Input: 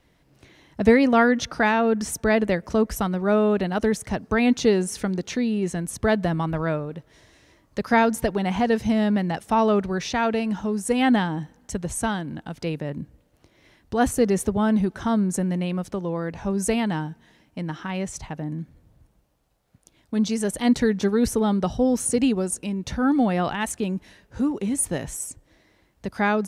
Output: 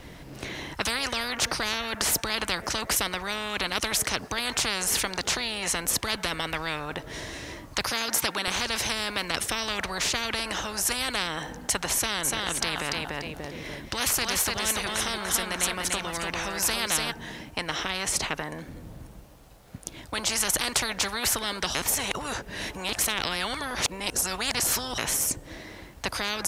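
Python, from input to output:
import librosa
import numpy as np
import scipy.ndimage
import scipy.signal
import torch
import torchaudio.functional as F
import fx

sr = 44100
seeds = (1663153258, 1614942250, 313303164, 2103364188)

y = fx.highpass(x, sr, hz=260.0, slope=12, at=(7.9, 8.48))
y = fx.echo_feedback(y, sr, ms=292, feedback_pct=27, wet_db=-6.5, at=(12.23, 17.1), fade=0.02)
y = fx.edit(y, sr, fx.reverse_span(start_s=21.75, length_s=3.23), tone=tone)
y = fx.spectral_comp(y, sr, ratio=10.0)
y = y * 10.0 ** (-3.0 / 20.0)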